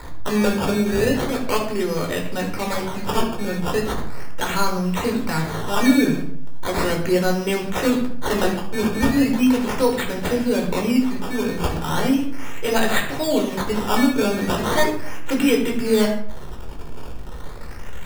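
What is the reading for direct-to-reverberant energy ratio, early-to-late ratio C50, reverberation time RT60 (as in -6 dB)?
0.5 dB, 7.0 dB, 0.60 s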